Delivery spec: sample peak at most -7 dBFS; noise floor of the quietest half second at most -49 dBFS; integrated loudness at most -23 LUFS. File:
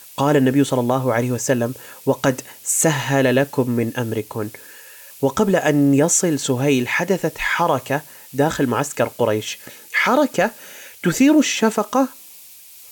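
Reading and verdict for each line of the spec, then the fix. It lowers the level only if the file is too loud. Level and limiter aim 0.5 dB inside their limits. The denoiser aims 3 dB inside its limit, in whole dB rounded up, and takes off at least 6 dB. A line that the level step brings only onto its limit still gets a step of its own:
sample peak -5.5 dBFS: fail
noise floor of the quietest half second -43 dBFS: fail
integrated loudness -19.0 LUFS: fail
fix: denoiser 6 dB, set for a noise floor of -43 dBFS; gain -4.5 dB

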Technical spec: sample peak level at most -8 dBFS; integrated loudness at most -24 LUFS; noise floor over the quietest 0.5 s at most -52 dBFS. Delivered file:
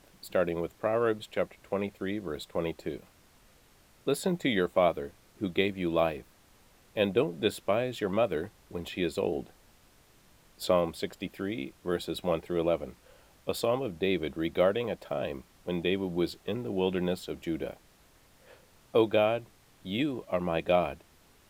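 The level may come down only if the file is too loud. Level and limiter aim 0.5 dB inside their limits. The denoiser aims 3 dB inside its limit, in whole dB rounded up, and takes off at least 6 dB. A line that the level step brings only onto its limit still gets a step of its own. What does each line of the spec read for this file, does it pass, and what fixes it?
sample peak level -10.0 dBFS: OK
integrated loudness -31.0 LUFS: OK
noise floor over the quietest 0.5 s -61 dBFS: OK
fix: none

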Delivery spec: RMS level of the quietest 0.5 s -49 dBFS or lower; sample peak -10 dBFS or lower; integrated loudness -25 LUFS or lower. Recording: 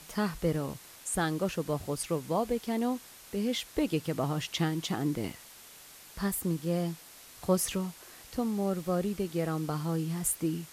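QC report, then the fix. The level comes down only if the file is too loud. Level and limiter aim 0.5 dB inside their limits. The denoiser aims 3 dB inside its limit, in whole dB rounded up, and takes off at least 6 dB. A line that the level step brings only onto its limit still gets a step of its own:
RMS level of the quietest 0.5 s -52 dBFS: OK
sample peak -13.5 dBFS: OK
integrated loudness -32.0 LUFS: OK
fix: none

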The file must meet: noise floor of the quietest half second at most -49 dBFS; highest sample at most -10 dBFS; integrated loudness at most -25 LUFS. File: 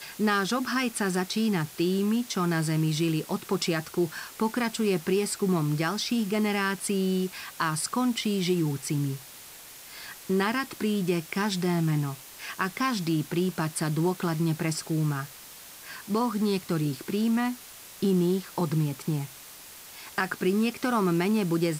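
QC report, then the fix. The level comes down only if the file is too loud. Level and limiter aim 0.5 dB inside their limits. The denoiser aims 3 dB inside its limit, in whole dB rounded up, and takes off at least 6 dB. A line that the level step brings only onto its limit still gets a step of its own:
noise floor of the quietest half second -46 dBFS: fail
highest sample -12.0 dBFS: OK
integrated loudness -27.5 LUFS: OK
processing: denoiser 6 dB, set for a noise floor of -46 dBFS

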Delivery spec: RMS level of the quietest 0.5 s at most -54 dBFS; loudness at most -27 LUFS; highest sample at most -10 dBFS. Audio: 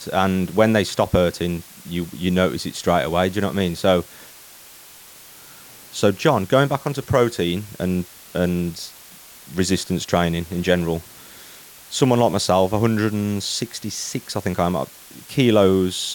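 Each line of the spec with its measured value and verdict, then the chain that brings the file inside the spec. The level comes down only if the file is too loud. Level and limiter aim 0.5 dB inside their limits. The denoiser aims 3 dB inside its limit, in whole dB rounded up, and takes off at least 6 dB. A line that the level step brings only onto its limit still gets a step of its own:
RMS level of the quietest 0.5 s -44 dBFS: fail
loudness -20.5 LUFS: fail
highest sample -3.5 dBFS: fail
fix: denoiser 6 dB, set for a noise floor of -44 dBFS; gain -7 dB

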